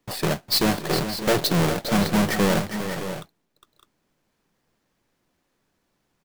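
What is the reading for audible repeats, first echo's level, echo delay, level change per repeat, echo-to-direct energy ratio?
3, -9.5 dB, 407 ms, no regular repeats, -7.0 dB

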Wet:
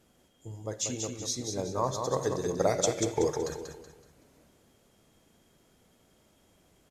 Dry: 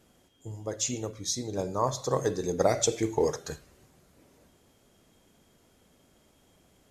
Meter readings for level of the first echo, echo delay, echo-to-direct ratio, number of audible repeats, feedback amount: -5.5 dB, 188 ms, -5.0 dB, 4, 36%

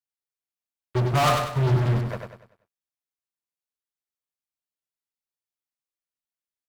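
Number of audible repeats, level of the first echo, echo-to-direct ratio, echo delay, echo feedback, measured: 4, -5.0 dB, -4.5 dB, 97 ms, 39%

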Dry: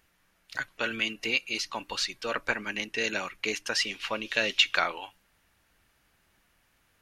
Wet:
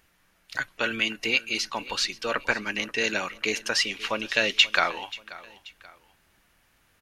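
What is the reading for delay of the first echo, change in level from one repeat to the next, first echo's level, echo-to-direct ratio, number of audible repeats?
533 ms, -8.0 dB, -19.0 dB, -18.5 dB, 2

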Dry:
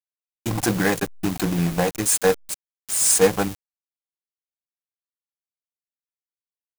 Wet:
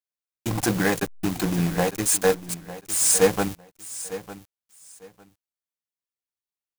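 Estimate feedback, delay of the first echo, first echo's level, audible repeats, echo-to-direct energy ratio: 21%, 903 ms, -15.0 dB, 2, -15.0 dB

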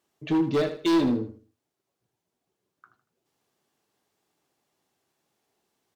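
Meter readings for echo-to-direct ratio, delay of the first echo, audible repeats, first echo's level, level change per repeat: -10.5 dB, 78 ms, 3, -11.0 dB, -11.0 dB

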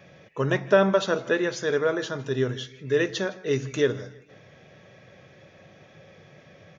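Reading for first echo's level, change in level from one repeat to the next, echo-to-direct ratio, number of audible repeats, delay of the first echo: -22.0 dB, -7.0 dB, -21.0 dB, 2, 160 ms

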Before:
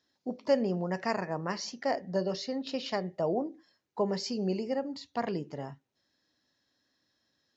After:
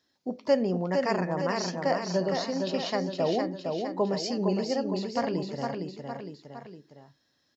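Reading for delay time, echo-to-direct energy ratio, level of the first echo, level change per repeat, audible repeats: 460 ms, -3.0 dB, -4.5 dB, -5.5 dB, 3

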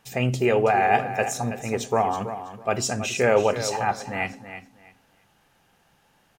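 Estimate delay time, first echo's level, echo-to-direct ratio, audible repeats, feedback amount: 326 ms, -11.0 dB, -11.0 dB, 2, 21%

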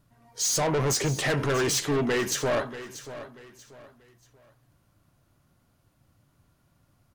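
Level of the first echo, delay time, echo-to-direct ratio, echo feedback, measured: -14.0 dB, 636 ms, -13.5 dB, 32%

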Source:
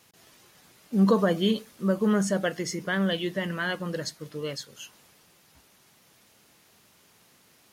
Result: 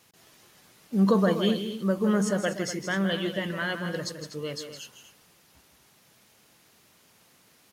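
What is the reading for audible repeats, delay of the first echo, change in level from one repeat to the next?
2, 161 ms, no regular repeats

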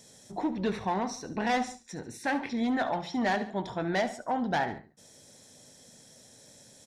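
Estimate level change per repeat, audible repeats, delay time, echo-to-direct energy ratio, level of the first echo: -6.0 dB, 2, 71 ms, -13.0 dB, -14.0 dB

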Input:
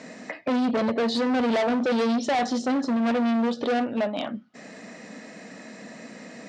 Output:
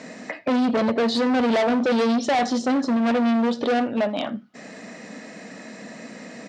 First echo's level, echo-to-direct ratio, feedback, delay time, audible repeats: -23.5 dB, -23.5 dB, no regular repeats, 81 ms, 1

